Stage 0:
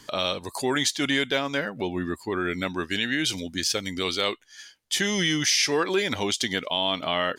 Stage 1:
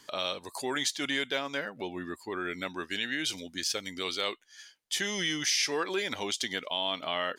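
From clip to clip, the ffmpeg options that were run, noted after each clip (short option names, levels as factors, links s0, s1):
-af "lowshelf=f=200:g=-11,volume=0.531"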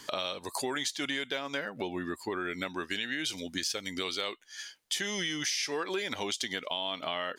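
-af "acompressor=threshold=0.0112:ratio=4,volume=2.37"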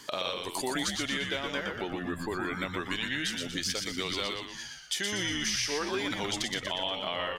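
-filter_complex "[0:a]asplit=7[s0][s1][s2][s3][s4][s5][s6];[s1]adelay=120,afreqshift=-90,volume=0.631[s7];[s2]adelay=240,afreqshift=-180,volume=0.279[s8];[s3]adelay=360,afreqshift=-270,volume=0.122[s9];[s4]adelay=480,afreqshift=-360,volume=0.0537[s10];[s5]adelay=600,afreqshift=-450,volume=0.0237[s11];[s6]adelay=720,afreqshift=-540,volume=0.0104[s12];[s0][s7][s8][s9][s10][s11][s12]amix=inputs=7:normalize=0"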